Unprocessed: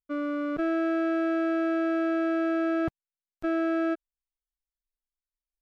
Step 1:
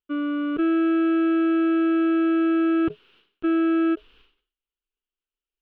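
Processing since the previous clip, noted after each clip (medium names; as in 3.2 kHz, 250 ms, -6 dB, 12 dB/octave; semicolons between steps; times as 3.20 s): FFT filter 160 Hz 0 dB, 420 Hz +13 dB, 630 Hz -6 dB, 1.4 kHz +7 dB, 2 kHz -1 dB, 2.9 kHz +14 dB, 7.1 kHz -29 dB; decay stretcher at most 120 dB/s; trim -2.5 dB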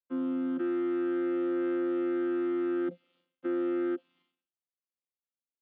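vocoder on a held chord bare fifth, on F3; bass shelf 220 Hz -6 dB; trim -5.5 dB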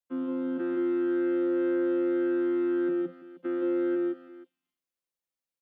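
multi-tap echo 128/168/174/328/481 ms -12/-4/-7/-18.5/-17 dB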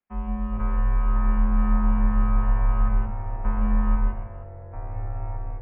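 ever faster or slower copies 390 ms, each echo -4 st, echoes 3, each echo -6 dB; mistuned SSB -310 Hz 300–2700 Hz; trim +8.5 dB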